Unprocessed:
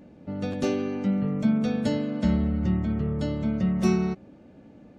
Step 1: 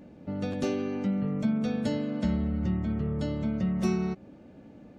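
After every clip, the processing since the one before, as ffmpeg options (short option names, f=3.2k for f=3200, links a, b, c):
-af "acompressor=threshold=-31dB:ratio=1.5"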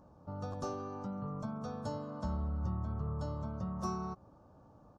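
-af "firequalizer=gain_entry='entry(110,0);entry(220,-13);entry(1100,9);entry(2000,-23);entry(5400,-2);entry(8300,-7)':delay=0.05:min_phase=1,volume=-3dB"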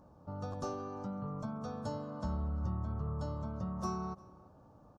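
-filter_complex "[0:a]asplit=2[a][b];[b]adelay=349.9,volume=-21dB,highshelf=f=4k:g=-7.87[c];[a][c]amix=inputs=2:normalize=0"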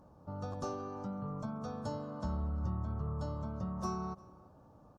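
-ar 48000 -c:a libopus -b:a 48k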